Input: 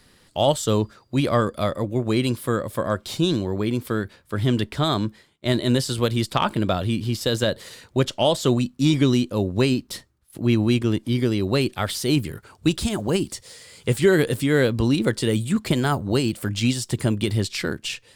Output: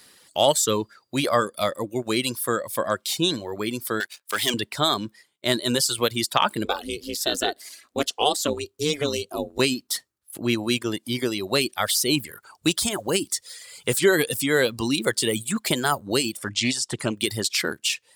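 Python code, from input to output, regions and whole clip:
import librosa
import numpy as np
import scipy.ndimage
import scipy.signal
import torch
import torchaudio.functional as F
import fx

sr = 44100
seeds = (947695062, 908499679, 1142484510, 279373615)

y = fx.chain(x, sr, fx.highpass(hz=1500.0, slope=6),
    fx.leveller(passes=3), at=(4.0, 4.54))
y = fx.chain(y, sr, fx.highpass(hz=63.0, slope=12),
    fx.ring_mod(carrier_hz=150.0), at=(6.65, 9.59))
y = fx.chain(y, sr, fx.lowpass(hz=7500.0, slope=12),
    fx.doppler_dist(depth_ms=0.14), at=(16.37, 17.16))
y = fx.dereverb_blind(y, sr, rt60_s=0.9)
y = fx.highpass(y, sr, hz=450.0, slope=6)
y = fx.high_shelf(y, sr, hz=5400.0, db=9.0)
y = F.gain(torch.from_numpy(y), 2.5).numpy()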